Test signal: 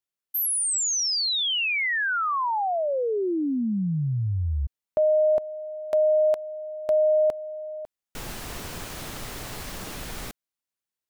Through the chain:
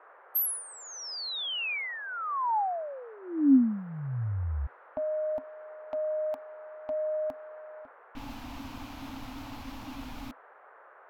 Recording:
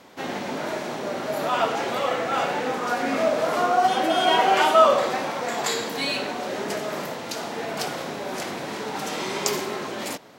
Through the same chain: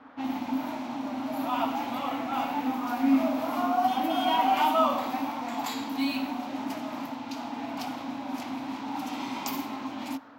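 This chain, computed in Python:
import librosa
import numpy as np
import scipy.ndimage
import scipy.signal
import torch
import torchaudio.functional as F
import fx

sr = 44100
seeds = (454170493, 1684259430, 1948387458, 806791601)

y = fx.curve_eq(x, sr, hz=(120.0, 180.0, 270.0, 400.0, 860.0, 1700.0, 2400.0, 9000.0, 15000.0), db=(0, -10, 15, -19, 5, -9, -1, -9, 14))
y = fx.dmg_noise_band(y, sr, seeds[0], low_hz=440.0, high_hz=1600.0, level_db=-49.0)
y = fx.env_lowpass(y, sr, base_hz=2700.0, full_db=-21.0)
y = y * librosa.db_to_amplitude(-5.5)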